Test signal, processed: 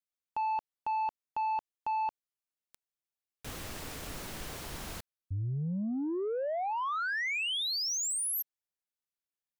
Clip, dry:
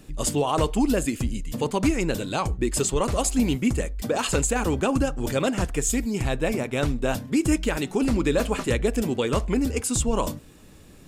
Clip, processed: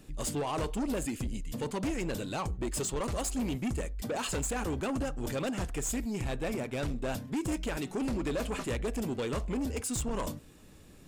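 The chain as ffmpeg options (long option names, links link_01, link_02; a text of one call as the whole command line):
ffmpeg -i in.wav -af "asoftclip=type=tanh:threshold=-22.5dB,volume=-5.5dB" out.wav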